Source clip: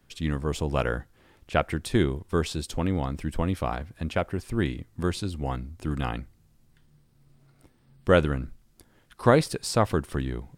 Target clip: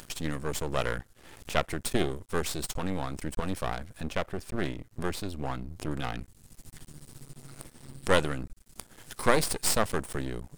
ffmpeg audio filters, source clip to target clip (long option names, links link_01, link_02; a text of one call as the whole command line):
ffmpeg -i in.wav -af "asetnsamples=nb_out_samples=441:pad=0,asendcmd='4.01 equalizer g 3;6.19 equalizer g 13',equalizer=frequency=8800:width=0.7:gain=10,acompressor=mode=upward:threshold=-28dB:ratio=2.5,aeval=exprs='max(val(0),0)':channel_layout=same" out.wav